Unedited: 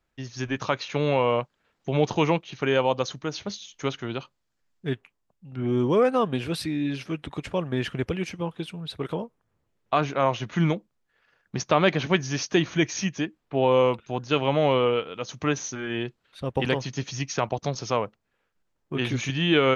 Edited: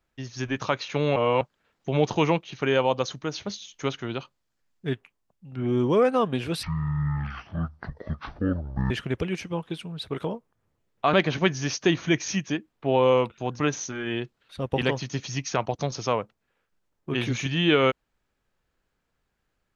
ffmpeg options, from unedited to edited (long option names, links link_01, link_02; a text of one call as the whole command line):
ffmpeg -i in.wav -filter_complex "[0:a]asplit=7[link_01][link_02][link_03][link_04][link_05][link_06][link_07];[link_01]atrim=end=1.162[link_08];[link_02]atrim=start=1.158:end=1.412,asetpts=PTS-STARTPTS,areverse[link_09];[link_03]atrim=start=1.408:end=6.634[link_10];[link_04]atrim=start=6.63:end=7.79,asetpts=PTS-STARTPTS,asetrate=22491,aresample=44100[link_11];[link_05]atrim=start=7.786:end=10.022[link_12];[link_06]atrim=start=11.818:end=14.282[link_13];[link_07]atrim=start=15.428[link_14];[link_08][link_09]acrossfade=duration=0.004:curve1=hsin:curve2=hsin[link_15];[link_15][link_10]acrossfade=duration=0.004:curve1=hsin:curve2=hsin[link_16];[link_16][link_11]acrossfade=duration=0.004:curve1=hsin:curve2=hsin[link_17];[link_17][link_12]acrossfade=duration=0.004:curve1=hsin:curve2=hsin[link_18];[link_18][link_13]acrossfade=duration=0.004:curve1=hsin:curve2=hsin[link_19];[link_19][link_14]acrossfade=duration=0.004:curve1=hsin:curve2=hsin" out.wav